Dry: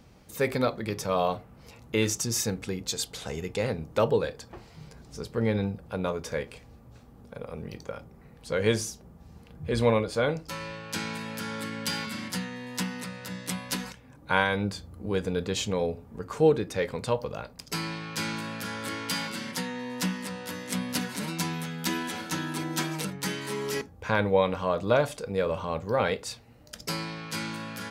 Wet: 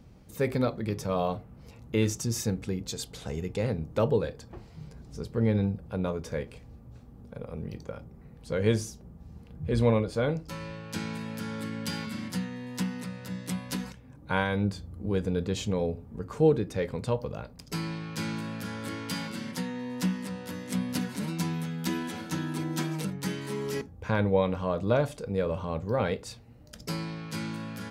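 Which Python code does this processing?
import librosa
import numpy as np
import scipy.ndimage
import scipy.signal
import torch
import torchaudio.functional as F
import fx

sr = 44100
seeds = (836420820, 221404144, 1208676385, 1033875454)

y = fx.low_shelf(x, sr, hz=410.0, db=10.0)
y = y * 10.0 ** (-6.0 / 20.0)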